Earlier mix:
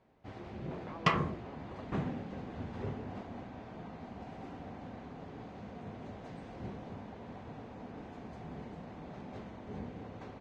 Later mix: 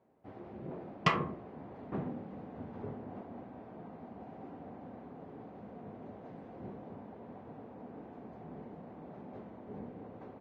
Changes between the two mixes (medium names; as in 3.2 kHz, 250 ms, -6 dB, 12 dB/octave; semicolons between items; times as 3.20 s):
speech: muted; first sound: add band-pass filter 410 Hz, Q 0.54